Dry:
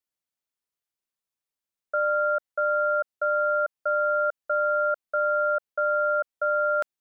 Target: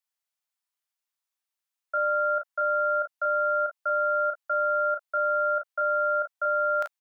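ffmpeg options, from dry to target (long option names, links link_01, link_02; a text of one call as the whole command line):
ffmpeg -i in.wav -af "highpass=frequency=690:width=0.5412,highpass=frequency=690:width=1.3066,aecho=1:1:18|35|49:0.168|0.668|0.178" out.wav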